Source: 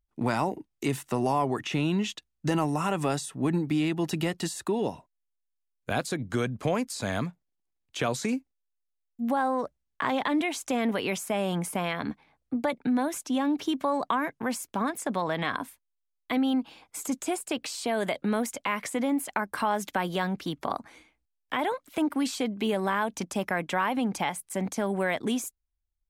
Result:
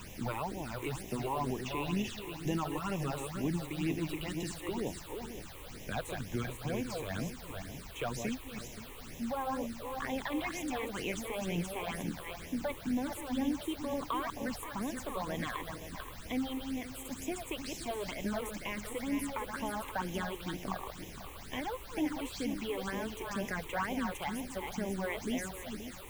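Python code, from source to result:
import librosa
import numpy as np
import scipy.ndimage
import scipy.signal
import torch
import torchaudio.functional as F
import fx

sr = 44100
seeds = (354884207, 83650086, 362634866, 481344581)

y = fx.reverse_delay_fb(x, sr, ms=263, feedback_pct=47, wet_db=-5)
y = fx.dmg_noise_colour(y, sr, seeds[0], colour='pink', level_db=-39.0)
y = fx.phaser_stages(y, sr, stages=8, low_hz=190.0, high_hz=1400.0, hz=2.1, feedback_pct=5)
y = F.gain(torch.from_numpy(y), -6.5).numpy()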